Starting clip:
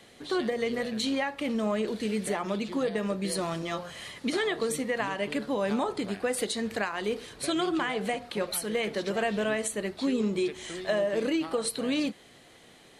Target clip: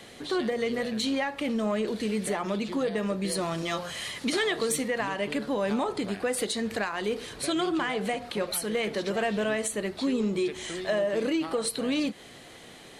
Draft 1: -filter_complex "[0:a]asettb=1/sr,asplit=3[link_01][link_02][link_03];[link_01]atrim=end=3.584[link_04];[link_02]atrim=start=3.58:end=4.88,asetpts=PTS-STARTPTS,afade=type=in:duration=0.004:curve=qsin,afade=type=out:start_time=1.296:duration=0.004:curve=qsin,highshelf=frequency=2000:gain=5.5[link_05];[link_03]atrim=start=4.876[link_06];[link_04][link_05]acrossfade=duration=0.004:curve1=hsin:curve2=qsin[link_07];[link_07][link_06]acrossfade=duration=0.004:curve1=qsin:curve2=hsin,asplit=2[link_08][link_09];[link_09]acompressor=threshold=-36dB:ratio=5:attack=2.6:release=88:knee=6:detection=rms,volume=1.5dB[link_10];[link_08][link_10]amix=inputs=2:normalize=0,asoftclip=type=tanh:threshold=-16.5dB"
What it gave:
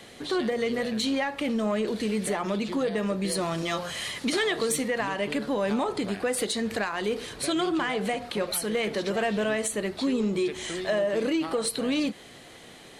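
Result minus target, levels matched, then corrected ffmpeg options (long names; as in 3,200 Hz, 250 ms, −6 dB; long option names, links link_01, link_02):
downward compressor: peak gain reduction −7 dB
-filter_complex "[0:a]asettb=1/sr,asplit=3[link_01][link_02][link_03];[link_01]atrim=end=3.584[link_04];[link_02]atrim=start=3.58:end=4.88,asetpts=PTS-STARTPTS,afade=type=in:duration=0.004:curve=qsin,afade=type=out:start_time=1.296:duration=0.004:curve=qsin,highshelf=frequency=2000:gain=5.5[link_05];[link_03]atrim=start=4.876[link_06];[link_04][link_05]acrossfade=duration=0.004:curve1=hsin:curve2=qsin[link_07];[link_07][link_06]acrossfade=duration=0.004:curve1=qsin:curve2=hsin,asplit=2[link_08][link_09];[link_09]acompressor=threshold=-44.5dB:ratio=5:attack=2.6:release=88:knee=6:detection=rms,volume=1.5dB[link_10];[link_08][link_10]amix=inputs=2:normalize=0,asoftclip=type=tanh:threshold=-16.5dB"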